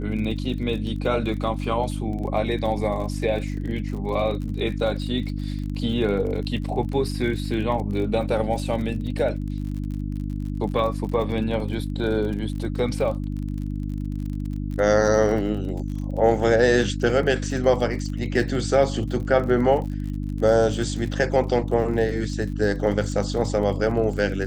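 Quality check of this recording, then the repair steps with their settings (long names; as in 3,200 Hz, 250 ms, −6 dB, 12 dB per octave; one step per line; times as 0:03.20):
surface crackle 40 per second −32 dBFS
mains hum 50 Hz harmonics 6 −28 dBFS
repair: click removal
hum removal 50 Hz, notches 6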